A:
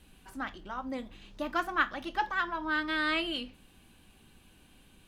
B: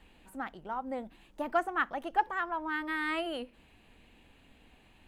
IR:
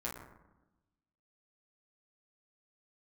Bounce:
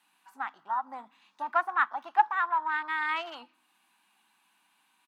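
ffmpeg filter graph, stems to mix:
-filter_complex "[0:a]bandreject=f=3.1k:w=15,acompressor=threshold=-51dB:ratio=1.5,volume=-8.5dB,asplit=2[a][b];[b]volume=-10dB[c];[1:a]afwtdn=0.00794,adelay=3.6,volume=1.5dB[d];[2:a]atrim=start_sample=2205[e];[c][e]afir=irnorm=-1:irlink=0[f];[a][d][f]amix=inputs=3:normalize=0,highpass=f=220:w=0.5412,highpass=f=220:w=1.3066,lowshelf=f=680:t=q:w=3:g=-10.5"

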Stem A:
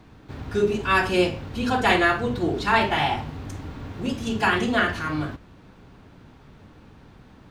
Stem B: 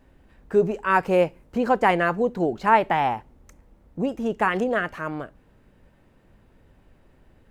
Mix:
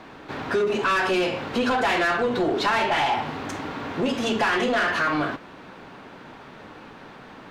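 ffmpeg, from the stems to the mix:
-filter_complex "[0:a]highpass=130,volume=-1.5dB[a];[1:a]acompressor=threshold=-24dB:ratio=6,volume=-2.5dB[b];[a][b]amix=inputs=2:normalize=0,asplit=2[c][d];[d]highpass=f=720:p=1,volume=21dB,asoftclip=type=tanh:threshold=-8dB[e];[c][e]amix=inputs=2:normalize=0,lowpass=f=2.5k:p=1,volume=-6dB,acompressor=threshold=-20dB:ratio=6"

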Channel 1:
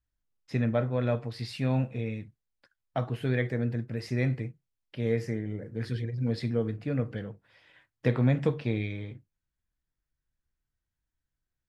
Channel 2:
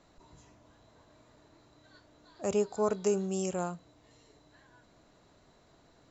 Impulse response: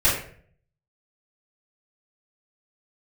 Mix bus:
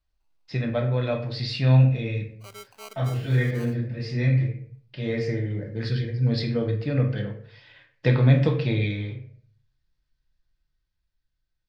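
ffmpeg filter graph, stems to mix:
-filter_complex "[0:a]dynaudnorm=f=180:g=13:m=3.5dB,lowpass=f=4.5k:t=q:w=2.6,volume=-1.5dB,asplit=2[a][b];[b]volume=-18dB[c];[1:a]agate=range=-14dB:threshold=-51dB:ratio=16:detection=peak,acrusher=samples=25:mix=1:aa=0.000001,highpass=f=1.2k:p=1,volume=-8.5dB,asplit=2[d][e];[e]apad=whole_len=515257[f];[a][f]sidechaincompress=threshold=-59dB:ratio=8:attack=24:release=1220[g];[2:a]atrim=start_sample=2205[h];[c][h]afir=irnorm=-1:irlink=0[i];[g][d][i]amix=inputs=3:normalize=0"

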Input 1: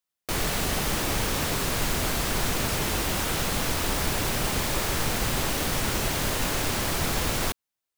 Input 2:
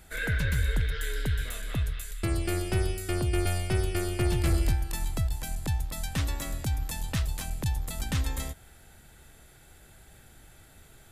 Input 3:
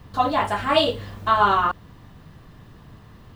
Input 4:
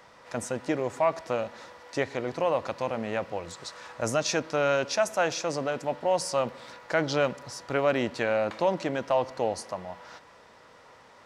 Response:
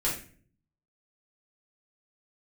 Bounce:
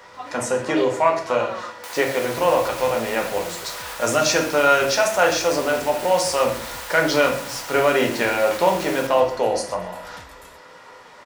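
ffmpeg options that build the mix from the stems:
-filter_complex "[0:a]highpass=f=590:w=0.5412,highpass=f=590:w=1.3066,alimiter=limit=-23dB:level=0:latency=1:release=129,adelay=1550,volume=-3dB,asplit=2[a][b];[b]volume=-7.5dB[c];[1:a]adelay=2050,volume=-11.5dB[d];[2:a]volume=-14.5dB[e];[3:a]volume=2.5dB,asplit=3[f][g][h];[g]volume=-3dB[i];[h]volume=-12dB[j];[4:a]atrim=start_sample=2205[k];[i][k]afir=irnorm=-1:irlink=0[l];[c][j]amix=inputs=2:normalize=0,aecho=0:1:127|254|381|508|635:1|0.33|0.109|0.0359|0.0119[m];[a][d][e][f][l][m]amix=inputs=6:normalize=0,lowshelf=f=200:g=-11.5"

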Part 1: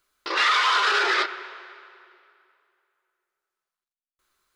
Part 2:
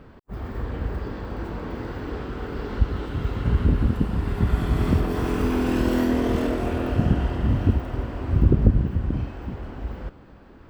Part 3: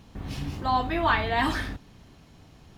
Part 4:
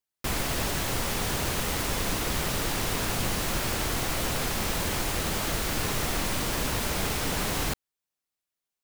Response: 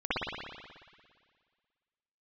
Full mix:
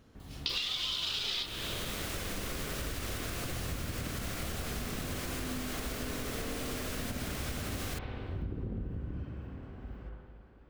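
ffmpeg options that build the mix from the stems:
-filter_complex "[0:a]highshelf=f=2.3k:t=q:w=3:g=11.5,adelay=200,volume=-4.5dB[a];[1:a]volume=-17.5dB,asplit=2[b][c];[c]volume=-9dB[d];[2:a]volume=-13.5dB[e];[3:a]adelay=250,volume=-1dB,asplit=2[f][g];[g]volume=-22.5dB[h];[a][e]amix=inputs=2:normalize=0,highshelf=f=5.1k:g=6,acompressor=threshold=-16dB:ratio=6,volume=0dB[i];[b][f]amix=inputs=2:normalize=0,asuperstop=centerf=890:order=4:qfactor=2.6,alimiter=level_in=1.5dB:limit=-24dB:level=0:latency=1:release=338,volume=-1.5dB,volume=0dB[j];[4:a]atrim=start_sample=2205[k];[d][h]amix=inputs=2:normalize=0[l];[l][k]afir=irnorm=-1:irlink=0[m];[i][j][m]amix=inputs=3:normalize=0,acompressor=threshold=-33dB:ratio=6"

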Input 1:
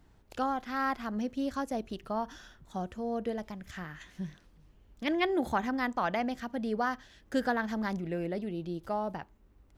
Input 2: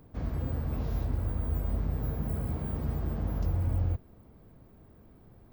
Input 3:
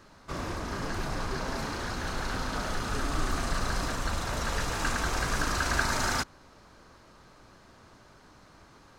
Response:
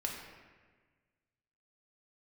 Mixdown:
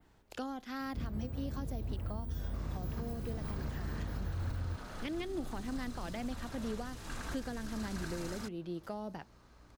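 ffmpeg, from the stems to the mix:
-filter_complex "[0:a]lowshelf=f=220:g=-6.5,volume=0.5dB[a];[1:a]adelay=800,volume=-2.5dB[b];[2:a]aeval=exprs='val(0)+0.002*(sin(2*PI*60*n/s)+sin(2*PI*2*60*n/s)/2+sin(2*PI*3*60*n/s)/3+sin(2*PI*4*60*n/s)/4+sin(2*PI*5*60*n/s)/5)':c=same,adelay=2250,volume=-9dB[c];[a][b][c]amix=inputs=3:normalize=0,acrossover=split=400|3000[d][e][f];[e]acompressor=threshold=-43dB:ratio=6[g];[d][g][f]amix=inputs=3:normalize=0,adynamicequalizer=threshold=0.00126:dfrequency=5900:dqfactor=1.1:tfrequency=5900:tqfactor=1.1:attack=5:release=100:ratio=0.375:range=2.5:mode=cutabove:tftype=bell,alimiter=level_in=4.5dB:limit=-24dB:level=0:latency=1:release=455,volume=-4.5dB"

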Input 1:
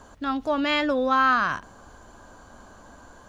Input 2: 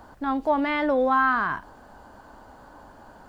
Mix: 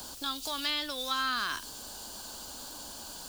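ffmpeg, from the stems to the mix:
-filter_complex "[0:a]volume=-6dB[a];[1:a]equalizer=f=130:w=1:g=-5,acrossover=split=140|3000[b][c][d];[c]acompressor=threshold=-30dB:ratio=6[e];[b][e][d]amix=inputs=3:normalize=0,aexciter=amount=15.9:drive=3.9:freq=2.9k,volume=-0.5dB[f];[a][f]amix=inputs=2:normalize=0,acrossover=split=120|570|1200[g][h][i][j];[g]acompressor=threshold=-57dB:ratio=4[k];[h]acompressor=threshold=-45dB:ratio=4[l];[i]acompressor=threshold=-58dB:ratio=4[m];[j]acompressor=threshold=-29dB:ratio=4[n];[k][l][m][n]amix=inputs=4:normalize=0"

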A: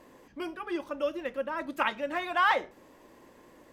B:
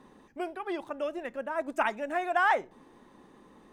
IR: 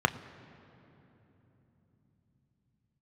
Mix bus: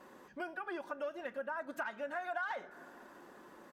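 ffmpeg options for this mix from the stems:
-filter_complex "[0:a]aecho=1:1:5.3:0.67,asoftclip=type=tanh:threshold=-17.5dB,volume=-5dB[a];[1:a]equalizer=f=1.5k:w=2.7:g=14.5,acompressor=threshold=-22dB:ratio=6,adelay=7.4,volume=-6.5dB,asplit=3[b][c][d];[c]volume=-18.5dB[e];[d]apad=whole_len=164416[f];[a][f]sidechaincompress=threshold=-35dB:ratio=8:attack=5.5:release=234[g];[2:a]atrim=start_sample=2205[h];[e][h]afir=irnorm=-1:irlink=0[i];[g][b][i]amix=inputs=3:normalize=0,highpass=f=120:p=1,acompressor=threshold=-42dB:ratio=2"

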